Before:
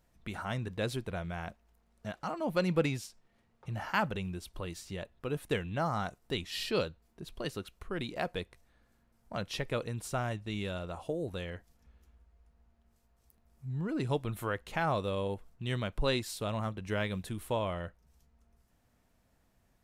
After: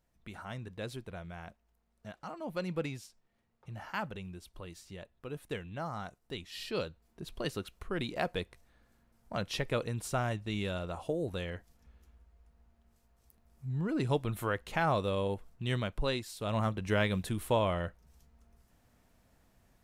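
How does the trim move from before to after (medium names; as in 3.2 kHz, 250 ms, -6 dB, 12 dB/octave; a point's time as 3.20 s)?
6.55 s -6.5 dB
7.25 s +1.5 dB
15.75 s +1.5 dB
16.34 s -5.5 dB
16.57 s +4 dB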